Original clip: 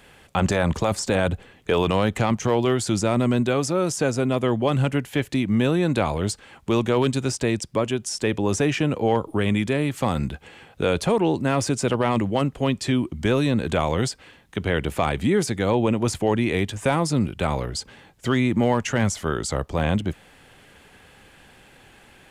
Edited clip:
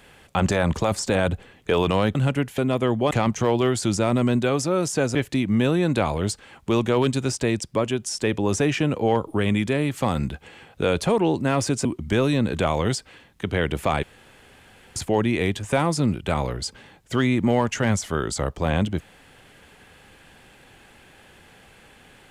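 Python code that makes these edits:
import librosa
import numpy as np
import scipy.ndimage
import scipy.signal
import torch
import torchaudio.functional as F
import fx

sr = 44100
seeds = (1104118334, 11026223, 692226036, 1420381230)

y = fx.edit(x, sr, fx.swap(start_s=2.15, length_s=2.04, other_s=4.72, other_length_s=0.43),
    fx.cut(start_s=11.85, length_s=1.13),
    fx.room_tone_fill(start_s=15.16, length_s=0.93), tone=tone)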